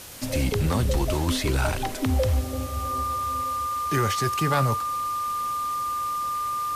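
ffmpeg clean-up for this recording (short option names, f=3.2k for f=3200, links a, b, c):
-af "adeclick=t=4,bandreject=f=1.2k:w=30,afwtdn=0.0089"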